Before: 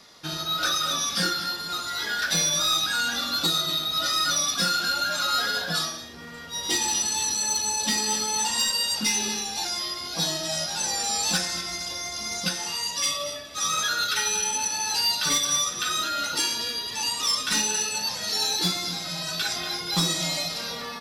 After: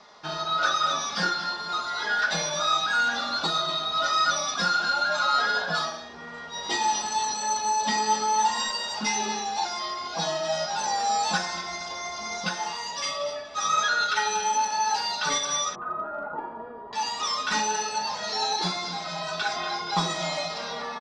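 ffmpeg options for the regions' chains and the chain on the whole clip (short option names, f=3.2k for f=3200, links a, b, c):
-filter_complex "[0:a]asettb=1/sr,asplit=3[a][b][c];[a]atrim=end=15.754[d];[b]atrim=start=15.75:end=16.93,asetpts=PTS-STARTPTS,afade=t=in:d=0.004:c=qsin,afade=t=out:st=1.176:d=0.004:c=qsin,lowpass=f=1.1k:w=0.5412,lowpass=f=1.1k:w=1.3066,asoftclip=type=hard:threshold=-28.5dB[e];[c]atrim=start=16.926[f];[d][e]acrossfade=d=0.004:c1=hsin:c2=qsin[g];[g][f]acrossfade=d=0.004:c1=qsin:c2=hsin,lowpass=f=6.7k:w=0.5412,lowpass=f=6.7k:w=1.3066,equalizer=f=870:t=o:w=1.8:g=14,aecho=1:1:4.8:0.39,volume=-6.5dB"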